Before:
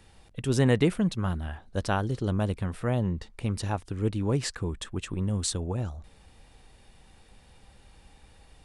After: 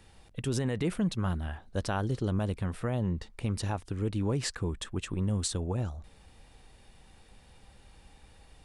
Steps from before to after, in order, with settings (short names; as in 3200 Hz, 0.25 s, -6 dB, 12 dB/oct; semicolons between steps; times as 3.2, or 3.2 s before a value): limiter -19.5 dBFS, peak gain reduction 10 dB; gain -1 dB